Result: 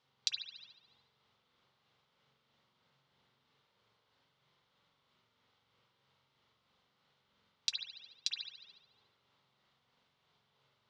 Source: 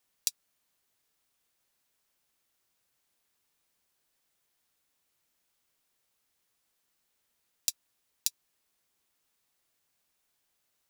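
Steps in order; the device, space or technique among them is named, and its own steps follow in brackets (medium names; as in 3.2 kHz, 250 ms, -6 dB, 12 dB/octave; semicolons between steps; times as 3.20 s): combo amplifier with spring reverb and tremolo (spring tank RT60 1.1 s, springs 44 ms, chirp 30 ms, DRR -3 dB; tremolo 3.1 Hz, depth 31%; cabinet simulation 87–4100 Hz, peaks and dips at 130 Hz +8 dB, 310 Hz -9 dB, 690 Hz -6 dB, 1.7 kHz -8 dB, 2.5 kHz -8 dB); trim +8.5 dB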